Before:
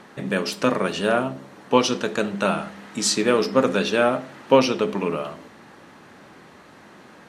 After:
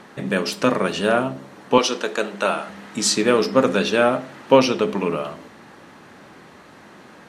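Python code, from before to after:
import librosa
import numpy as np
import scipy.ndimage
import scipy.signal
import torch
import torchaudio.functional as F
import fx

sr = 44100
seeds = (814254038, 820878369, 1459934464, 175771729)

y = fx.highpass(x, sr, hz=340.0, slope=12, at=(1.78, 2.69))
y = y * 10.0 ** (2.0 / 20.0)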